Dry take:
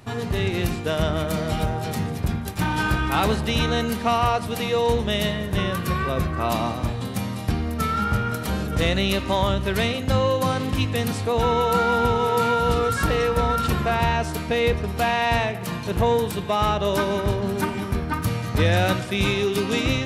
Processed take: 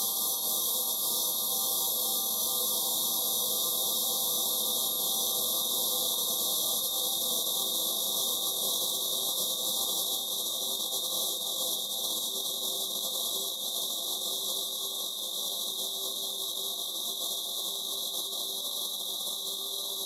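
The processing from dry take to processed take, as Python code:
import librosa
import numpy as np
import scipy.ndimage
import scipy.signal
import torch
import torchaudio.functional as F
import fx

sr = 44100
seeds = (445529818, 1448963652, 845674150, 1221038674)

p1 = scipy.signal.sosfilt(scipy.signal.bessel(2, 230.0, 'highpass', norm='mag', fs=sr, output='sos'), x)
p2 = p1 + fx.echo_feedback(p1, sr, ms=197, feedback_pct=56, wet_db=-6.0, dry=0)
p3 = fx.rev_gated(p2, sr, seeds[0], gate_ms=270, shape='rising', drr_db=-8.0)
p4 = fx.paulstretch(p3, sr, seeds[1], factor=47.0, window_s=0.5, from_s=8.76)
p5 = fx.cheby_harmonics(p4, sr, harmonics=(6,), levels_db=(-44,), full_scale_db=-1.0)
p6 = fx.brickwall_bandstop(p5, sr, low_hz=1200.0, high_hz=3200.0)
p7 = np.diff(p6, prepend=0.0)
y = fx.over_compress(p7, sr, threshold_db=-31.0, ratio=-0.5)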